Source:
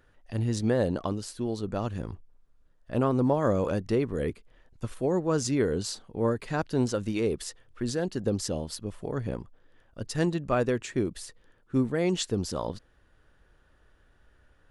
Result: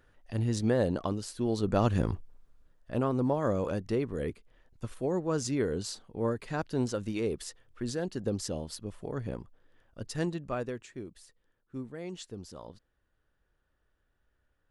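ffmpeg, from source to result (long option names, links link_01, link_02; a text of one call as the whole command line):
ffmpeg -i in.wav -af "volume=7dB,afade=type=in:start_time=1.33:duration=0.69:silence=0.375837,afade=type=out:start_time=2.02:duration=0.99:silence=0.281838,afade=type=out:start_time=10.06:duration=0.88:silence=0.316228" out.wav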